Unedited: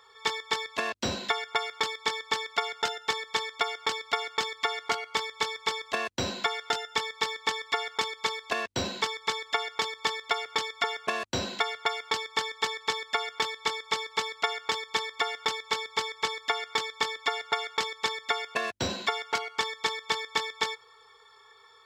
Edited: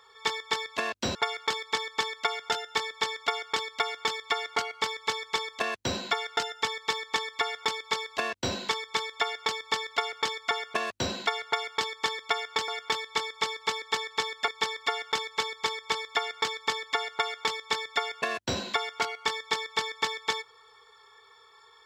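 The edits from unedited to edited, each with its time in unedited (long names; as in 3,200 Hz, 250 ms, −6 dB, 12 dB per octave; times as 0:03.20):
0:01.15–0:01.48: remove
0:12.52–0:13.18: swap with 0:14.32–0:14.81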